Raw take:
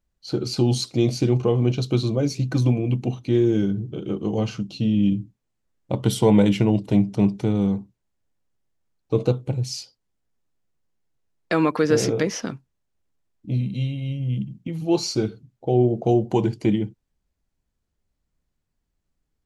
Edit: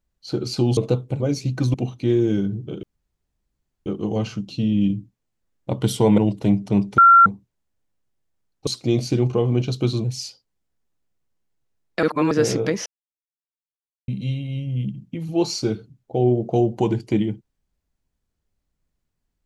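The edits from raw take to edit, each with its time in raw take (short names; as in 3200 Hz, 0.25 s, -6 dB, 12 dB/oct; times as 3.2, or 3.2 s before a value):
0.77–2.14 swap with 9.14–9.57
2.68–2.99 cut
4.08 insert room tone 1.03 s
6.4–6.65 cut
7.45–7.73 bleep 1370 Hz -7 dBFS
11.56–11.84 reverse
12.39–13.61 mute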